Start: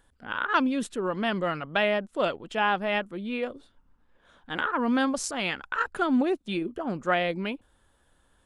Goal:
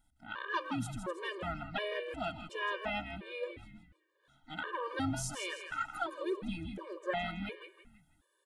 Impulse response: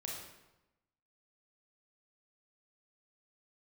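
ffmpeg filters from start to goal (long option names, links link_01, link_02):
-filter_complex "[0:a]highshelf=frequency=5000:gain=5.5,asplit=2[link_01][link_02];[link_02]asetrate=52444,aresample=44100,atempo=0.840896,volume=-13dB[link_03];[link_01][link_03]amix=inputs=2:normalize=0,asplit=5[link_04][link_05][link_06][link_07][link_08];[link_05]adelay=162,afreqshift=-140,volume=-8dB[link_09];[link_06]adelay=324,afreqshift=-280,volume=-16.6dB[link_10];[link_07]adelay=486,afreqshift=-420,volume=-25.3dB[link_11];[link_08]adelay=648,afreqshift=-560,volume=-33.9dB[link_12];[link_04][link_09][link_10][link_11][link_12]amix=inputs=5:normalize=0,asplit=2[link_13][link_14];[1:a]atrim=start_sample=2205[link_15];[link_14][link_15]afir=irnorm=-1:irlink=0,volume=-17dB[link_16];[link_13][link_16]amix=inputs=2:normalize=0,afftfilt=real='re*gt(sin(2*PI*1.4*pts/sr)*(1-2*mod(floor(b*sr/1024/310),2)),0)':imag='im*gt(sin(2*PI*1.4*pts/sr)*(1-2*mod(floor(b*sr/1024/310),2)),0)':win_size=1024:overlap=0.75,volume=-8.5dB"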